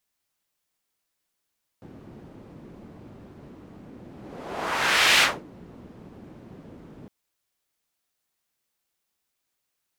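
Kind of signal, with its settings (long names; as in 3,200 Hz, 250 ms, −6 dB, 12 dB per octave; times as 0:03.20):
pass-by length 5.26 s, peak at 0:03.38, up 1.20 s, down 0.25 s, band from 230 Hz, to 2,700 Hz, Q 1.1, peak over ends 27.5 dB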